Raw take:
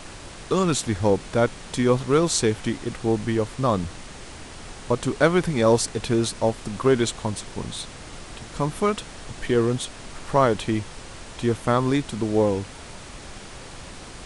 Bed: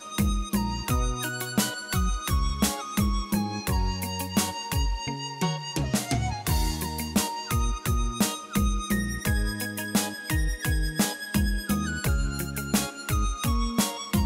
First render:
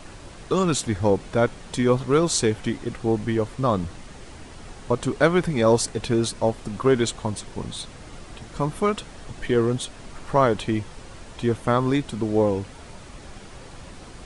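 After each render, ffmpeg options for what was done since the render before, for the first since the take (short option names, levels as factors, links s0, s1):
-af "afftdn=nr=6:nf=-41"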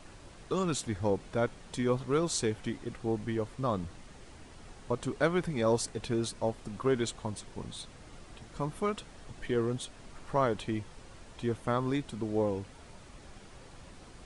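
-af "volume=0.335"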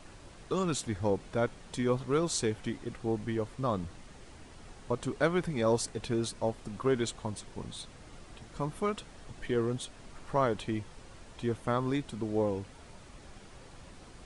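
-af anull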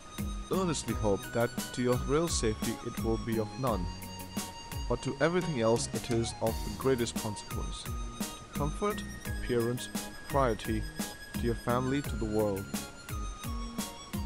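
-filter_complex "[1:a]volume=0.251[s0];[0:a][s0]amix=inputs=2:normalize=0"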